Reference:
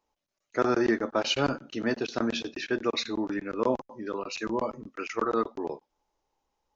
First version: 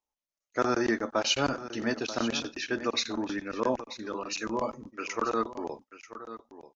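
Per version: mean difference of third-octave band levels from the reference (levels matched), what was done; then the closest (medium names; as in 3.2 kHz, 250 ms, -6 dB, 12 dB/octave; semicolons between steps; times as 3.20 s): 3.0 dB: gate -44 dBFS, range -13 dB; fifteen-band graphic EQ 160 Hz -4 dB, 400 Hz -4 dB, 6.3 kHz +6 dB; delay 937 ms -13.5 dB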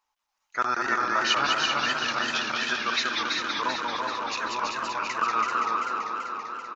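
10.5 dB: resonant low shelf 710 Hz -14 dB, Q 1.5; on a send: delay 331 ms -3.5 dB; on the sum: modulated delay 194 ms, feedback 79%, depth 172 cents, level -4 dB; trim +2.5 dB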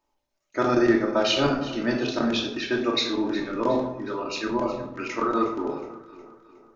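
5.0 dB: dynamic bell 3.7 kHz, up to +6 dB, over -48 dBFS, Q 3.1; echo whose repeats swap between lows and highs 182 ms, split 1.4 kHz, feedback 69%, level -13 dB; simulated room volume 940 m³, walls furnished, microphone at 2.7 m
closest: first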